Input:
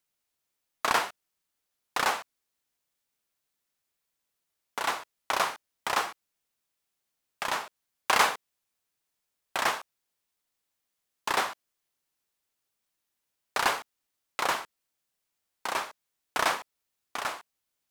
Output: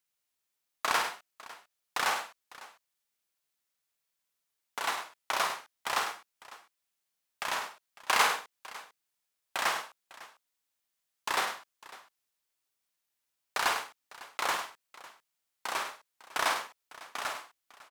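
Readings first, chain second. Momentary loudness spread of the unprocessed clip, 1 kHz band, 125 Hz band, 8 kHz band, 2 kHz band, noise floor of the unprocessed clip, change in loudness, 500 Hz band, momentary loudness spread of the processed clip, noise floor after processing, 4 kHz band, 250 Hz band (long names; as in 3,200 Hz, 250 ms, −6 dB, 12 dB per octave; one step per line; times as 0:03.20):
13 LU, −2.5 dB, can't be measured, −1.0 dB, −1.5 dB, −83 dBFS, −2.0 dB, −4.5 dB, 22 LU, −84 dBFS, −1.0 dB, −6.0 dB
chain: tilt shelving filter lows −3 dB, about 650 Hz
on a send: multi-tap delay 50/102/552 ms −7.5/−10/−19 dB
on the sum: level −5 dB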